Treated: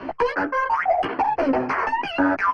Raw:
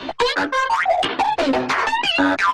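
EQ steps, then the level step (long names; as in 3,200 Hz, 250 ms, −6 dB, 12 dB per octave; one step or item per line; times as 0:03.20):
moving average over 12 samples
−1.5 dB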